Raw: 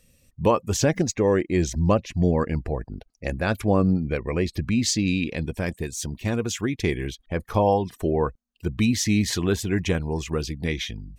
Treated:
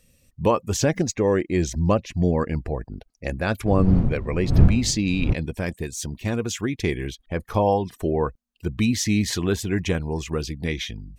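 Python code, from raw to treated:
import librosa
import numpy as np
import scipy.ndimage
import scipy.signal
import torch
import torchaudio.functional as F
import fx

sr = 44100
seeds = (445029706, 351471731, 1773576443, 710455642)

y = fx.dmg_wind(x, sr, seeds[0], corner_hz=120.0, level_db=-19.0, at=(3.65, 5.32), fade=0.02)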